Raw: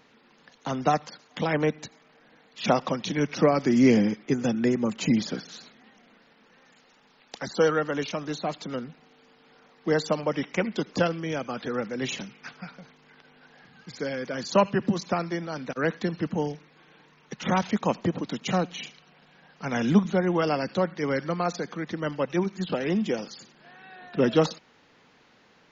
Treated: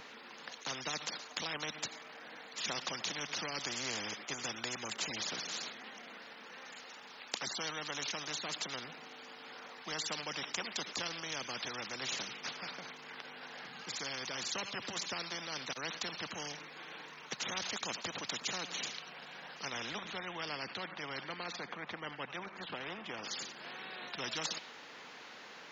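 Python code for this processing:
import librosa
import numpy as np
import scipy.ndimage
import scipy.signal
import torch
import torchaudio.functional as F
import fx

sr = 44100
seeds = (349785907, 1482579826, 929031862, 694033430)

y = fx.lowpass(x, sr, hz=fx.line((19.69, 2700.0), (23.23, 1400.0)), slope=12, at=(19.69, 23.23), fade=0.02)
y = fx.highpass(y, sr, hz=690.0, slope=6)
y = fx.dynamic_eq(y, sr, hz=3700.0, q=2.0, threshold_db=-52.0, ratio=4.0, max_db=7)
y = fx.spectral_comp(y, sr, ratio=4.0)
y = F.gain(torch.from_numpy(y), -6.0).numpy()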